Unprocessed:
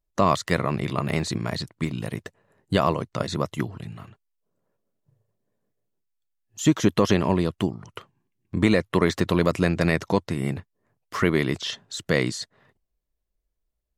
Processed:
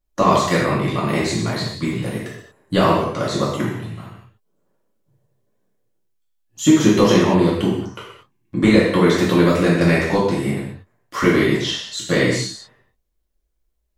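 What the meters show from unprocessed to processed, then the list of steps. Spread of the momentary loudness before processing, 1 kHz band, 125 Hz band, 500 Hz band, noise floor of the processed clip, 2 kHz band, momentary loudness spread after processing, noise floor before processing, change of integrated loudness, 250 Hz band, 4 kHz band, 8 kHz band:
13 LU, +6.5 dB, +5.0 dB, +7.0 dB, −69 dBFS, +6.0 dB, 16 LU, −78 dBFS, +6.5 dB, +7.5 dB, +7.0 dB, +7.0 dB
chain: reverb whose tail is shaped and stops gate 260 ms falling, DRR −6.5 dB
level −1 dB

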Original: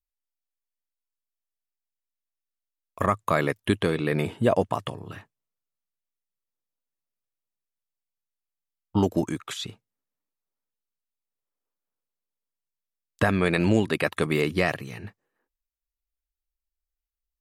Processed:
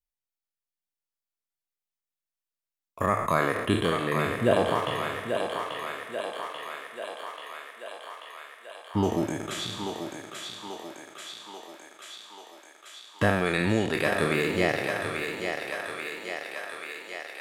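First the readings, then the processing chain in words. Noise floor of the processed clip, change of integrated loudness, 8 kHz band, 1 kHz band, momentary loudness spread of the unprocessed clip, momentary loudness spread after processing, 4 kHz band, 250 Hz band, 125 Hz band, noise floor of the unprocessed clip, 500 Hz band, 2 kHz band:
below −85 dBFS, −3.5 dB, +3.5 dB, +2.0 dB, 15 LU, 18 LU, +3.5 dB, −2.5 dB, −3.0 dB, below −85 dBFS, 0.0 dB, +2.5 dB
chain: peak hold with a decay on every bin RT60 1.81 s
reverb reduction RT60 0.59 s
feedback echo with a high-pass in the loop 837 ms, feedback 76%, high-pass 430 Hz, level −4.5 dB
level −4 dB

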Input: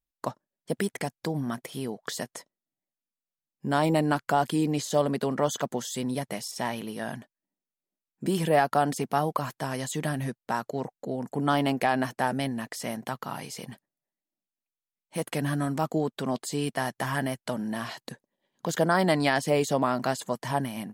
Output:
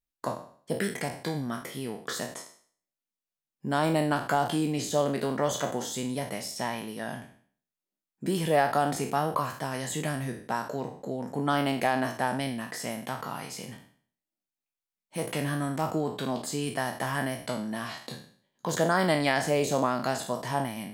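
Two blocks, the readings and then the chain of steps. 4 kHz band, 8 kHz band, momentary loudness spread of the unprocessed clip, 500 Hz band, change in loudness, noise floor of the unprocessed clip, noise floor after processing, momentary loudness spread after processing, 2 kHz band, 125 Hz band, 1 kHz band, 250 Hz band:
0.0 dB, +0.5 dB, 12 LU, −1.0 dB, −1.0 dB, below −85 dBFS, below −85 dBFS, 12 LU, 0.0 dB, −2.0 dB, −1.0 dB, −2.0 dB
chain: peak hold with a decay on every bin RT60 0.50 s
level −2.5 dB

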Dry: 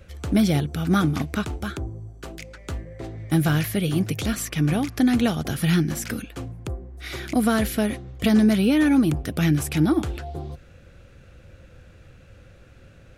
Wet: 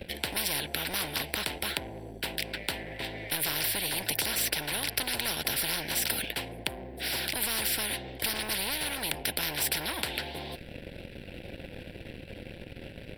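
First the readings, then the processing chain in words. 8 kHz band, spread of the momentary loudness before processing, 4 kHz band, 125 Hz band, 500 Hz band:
+3.5 dB, 17 LU, +4.5 dB, −18.5 dB, −9.5 dB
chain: leveller curve on the samples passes 2
phaser with its sweep stopped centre 2,900 Hz, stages 4
every bin compressed towards the loudest bin 10 to 1

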